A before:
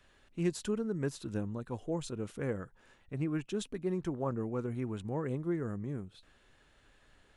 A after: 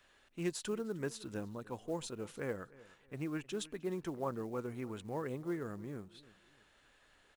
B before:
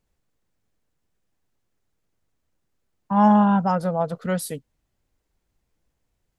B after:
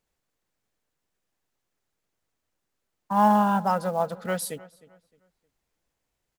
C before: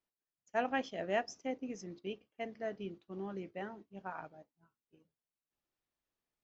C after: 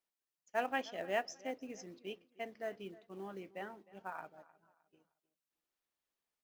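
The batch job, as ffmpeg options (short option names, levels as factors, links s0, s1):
-filter_complex "[0:a]lowshelf=f=280:g=-10.5,acrusher=bits=7:mode=log:mix=0:aa=0.000001,asplit=2[s0][s1];[s1]adelay=308,lowpass=f=3900:p=1,volume=0.1,asplit=2[s2][s3];[s3]adelay=308,lowpass=f=3900:p=1,volume=0.32,asplit=2[s4][s5];[s5]adelay=308,lowpass=f=3900:p=1,volume=0.32[s6];[s0][s2][s4][s6]amix=inputs=4:normalize=0"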